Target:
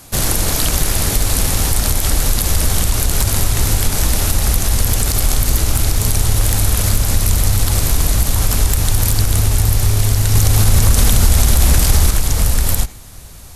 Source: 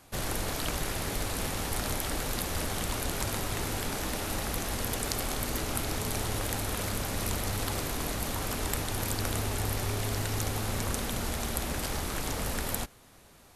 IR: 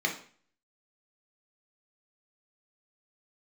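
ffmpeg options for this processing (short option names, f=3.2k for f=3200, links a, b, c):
-filter_complex "[0:a]acrossover=split=3900[a][b];[b]asoftclip=type=hard:threshold=-20dB[c];[a][c]amix=inputs=2:normalize=0,asubboost=boost=3:cutoff=120,asplit=2[d][e];[1:a]atrim=start_sample=2205,adelay=66[f];[e][f]afir=irnorm=-1:irlink=0,volume=-27dB[g];[d][g]amix=inputs=2:normalize=0,acompressor=threshold=-25dB:ratio=6,bass=f=250:g=5,treble=f=4k:g=9,asettb=1/sr,asplit=3[h][i][j];[h]atrim=end=10.354[k];[i]atrim=start=10.35:end=12.11,asetpts=PTS-STARTPTS,afade=t=in:d=0.004:c=qsin,afade=t=out:st=1.756:d=0.004:c=qsin,acontrast=53[l];[j]atrim=start=12.106[m];[k][l]acrossfade=d=0.004:c1=hsin:c2=qsin[n];[n][m]acrossfade=d=0.004:c1=qsin:c2=hsin,alimiter=level_in=12.5dB:limit=-1dB:release=50:level=0:latency=1,volume=-1dB"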